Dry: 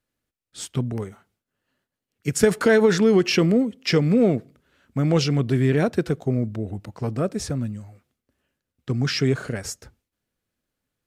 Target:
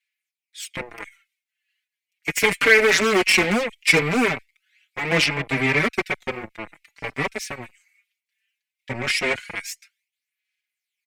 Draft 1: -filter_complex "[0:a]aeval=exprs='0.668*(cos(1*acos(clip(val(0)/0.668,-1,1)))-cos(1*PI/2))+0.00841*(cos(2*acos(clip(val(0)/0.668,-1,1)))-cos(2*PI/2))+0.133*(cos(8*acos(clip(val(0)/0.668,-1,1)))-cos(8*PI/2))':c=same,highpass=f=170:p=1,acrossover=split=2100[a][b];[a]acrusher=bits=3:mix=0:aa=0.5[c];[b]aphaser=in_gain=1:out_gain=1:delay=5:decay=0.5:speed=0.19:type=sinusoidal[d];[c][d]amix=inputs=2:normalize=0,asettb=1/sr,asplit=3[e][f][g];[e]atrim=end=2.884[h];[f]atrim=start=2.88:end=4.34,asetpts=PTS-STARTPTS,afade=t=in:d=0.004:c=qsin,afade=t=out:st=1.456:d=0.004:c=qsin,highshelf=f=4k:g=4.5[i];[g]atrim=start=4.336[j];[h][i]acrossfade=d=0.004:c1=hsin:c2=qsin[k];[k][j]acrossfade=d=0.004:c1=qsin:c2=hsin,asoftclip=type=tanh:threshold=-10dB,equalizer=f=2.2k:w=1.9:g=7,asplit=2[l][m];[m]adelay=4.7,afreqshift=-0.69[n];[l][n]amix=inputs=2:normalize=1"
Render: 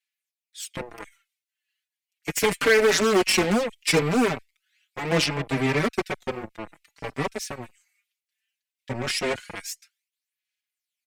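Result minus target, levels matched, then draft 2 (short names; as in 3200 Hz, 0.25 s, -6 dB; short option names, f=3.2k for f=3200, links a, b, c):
2000 Hz band -4.0 dB
-filter_complex "[0:a]aeval=exprs='0.668*(cos(1*acos(clip(val(0)/0.668,-1,1)))-cos(1*PI/2))+0.00841*(cos(2*acos(clip(val(0)/0.668,-1,1)))-cos(2*PI/2))+0.133*(cos(8*acos(clip(val(0)/0.668,-1,1)))-cos(8*PI/2))':c=same,highpass=f=170:p=1,acrossover=split=2100[a][b];[a]acrusher=bits=3:mix=0:aa=0.5[c];[b]aphaser=in_gain=1:out_gain=1:delay=5:decay=0.5:speed=0.19:type=sinusoidal[d];[c][d]amix=inputs=2:normalize=0,asettb=1/sr,asplit=3[e][f][g];[e]atrim=end=2.884[h];[f]atrim=start=2.88:end=4.34,asetpts=PTS-STARTPTS,afade=t=in:d=0.004:c=qsin,afade=t=out:st=1.456:d=0.004:c=qsin,highshelf=f=4k:g=4.5[i];[g]atrim=start=4.336[j];[h][i]acrossfade=d=0.004:c1=hsin:c2=qsin[k];[k][j]acrossfade=d=0.004:c1=qsin:c2=hsin,asoftclip=type=tanh:threshold=-10dB,equalizer=f=2.2k:w=1.9:g=17.5,asplit=2[l][m];[m]adelay=4.7,afreqshift=-0.69[n];[l][n]amix=inputs=2:normalize=1"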